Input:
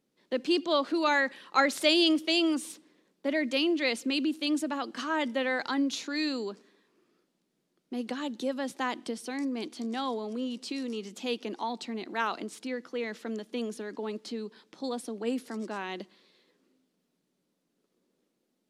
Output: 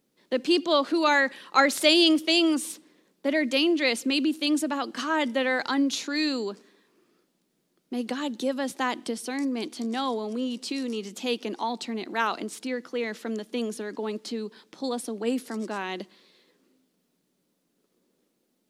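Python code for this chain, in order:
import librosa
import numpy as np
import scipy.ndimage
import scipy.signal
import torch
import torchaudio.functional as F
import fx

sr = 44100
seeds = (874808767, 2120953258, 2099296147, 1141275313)

y = fx.high_shelf(x, sr, hz=10000.0, db=7.5)
y = y * 10.0 ** (4.0 / 20.0)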